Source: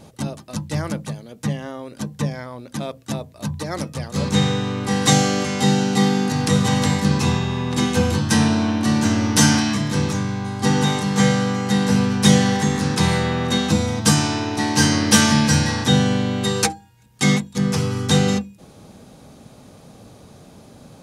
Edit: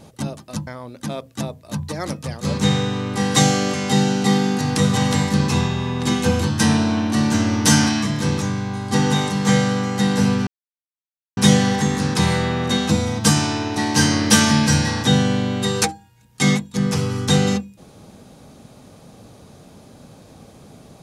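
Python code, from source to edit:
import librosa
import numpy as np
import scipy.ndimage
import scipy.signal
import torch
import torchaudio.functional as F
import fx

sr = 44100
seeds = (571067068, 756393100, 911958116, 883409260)

y = fx.edit(x, sr, fx.cut(start_s=0.67, length_s=1.71),
    fx.insert_silence(at_s=12.18, length_s=0.9), tone=tone)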